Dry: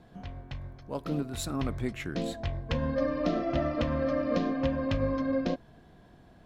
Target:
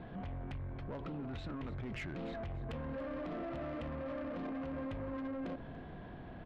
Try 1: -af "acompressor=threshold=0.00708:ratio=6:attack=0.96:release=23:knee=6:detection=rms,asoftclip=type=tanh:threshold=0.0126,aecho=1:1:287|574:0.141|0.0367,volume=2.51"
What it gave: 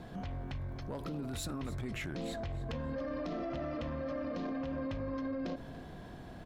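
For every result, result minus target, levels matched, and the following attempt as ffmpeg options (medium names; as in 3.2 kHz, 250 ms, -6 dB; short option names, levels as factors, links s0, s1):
saturation: distortion -10 dB; 4 kHz band +4.0 dB
-af "acompressor=threshold=0.00708:ratio=6:attack=0.96:release=23:knee=6:detection=rms,asoftclip=type=tanh:threshold=0.00531,aecho=1:1:287|574:0.141|0.0367,volume=2.51"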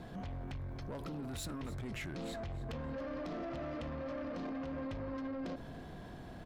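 4 kHz band +4.5 dB
-af "acompressor=threshold=0.00708:ratio=6:attack=0.96:release=23:knee=6:detection=rms,lowpass=f=3100:w=0.5412,lowpass=f=3100:w=1.3066,asoftclip=type=tanh:threshold=0.00531,aecho=1:1:287|574:0.141|0.0367,volume=2.51"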